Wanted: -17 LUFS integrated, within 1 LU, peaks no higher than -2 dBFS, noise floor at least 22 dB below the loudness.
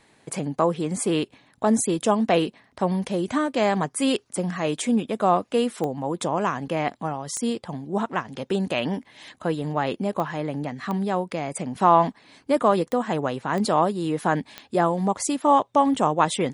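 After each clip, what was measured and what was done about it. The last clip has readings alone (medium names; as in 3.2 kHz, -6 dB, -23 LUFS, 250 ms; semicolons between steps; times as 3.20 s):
clicks found 7; loudness -24.5 LUFS; peak level -4.5 dBFS; loudness target -17.0 LUFS
-> de-click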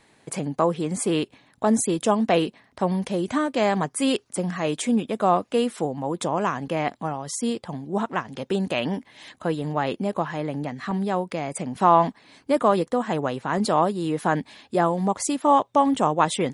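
clicks found 0; loudness -24.5 LUFS; peak level -4.5 dBFS; loudness target -17.0 LUFS
-> trim +7.5 dB; peak limiter -2 dBFS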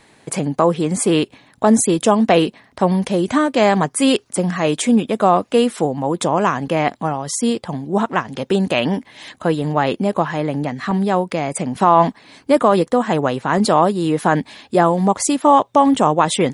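loudness -17.5 LUFS; peak level -2.0 dBFS; noise floor -54 dBFS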